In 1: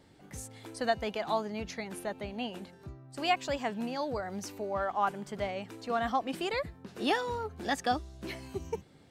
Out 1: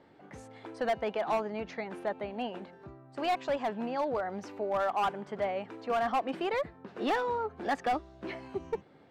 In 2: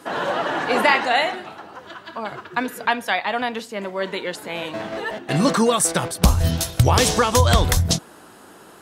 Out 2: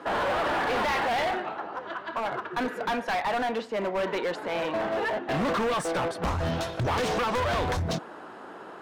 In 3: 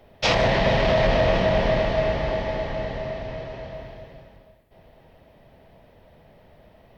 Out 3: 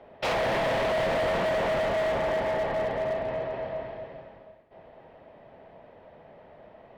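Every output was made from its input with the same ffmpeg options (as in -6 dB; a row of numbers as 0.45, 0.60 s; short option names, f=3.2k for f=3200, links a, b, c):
-filter_complex "[0:a]aemphasis=mode=reproduction:type=50kf,asplit=2[a][b];[b]highpass=f=720:p=1,volume=23dB,asoftclip=type=tanh:threshold=-3dB[c];[a][c]amix=inputs=2:normalize=0,lowpass=f=1k:p=1,volume=-6dB,volume=16.5dB,asoftclip=hard,volume=-16.5dB,volume=-8dB"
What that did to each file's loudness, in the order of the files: +1.0, -8.0, -5.0 LU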